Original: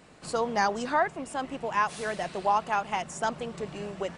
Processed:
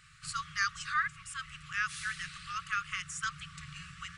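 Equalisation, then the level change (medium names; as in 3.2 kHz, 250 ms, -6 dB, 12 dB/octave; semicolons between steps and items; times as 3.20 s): brick-wall FIR band-stop 160–1100 Hz; 0.0 dB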